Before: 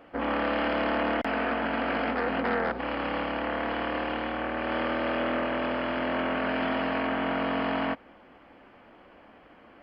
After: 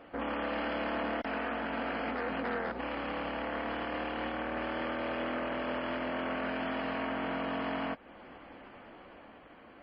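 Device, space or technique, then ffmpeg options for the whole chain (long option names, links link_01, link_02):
low-bitrate web radio: -af "dynaudnorm=framelen=180:gausssize=11:maxgain=3.5dB,alimiter=level_in=2.5dB:limit=-24dB:level=0:latency=1:release=294,volume=-2.5dB" -ar 24000 -c:a libmp3lame -b:a 24k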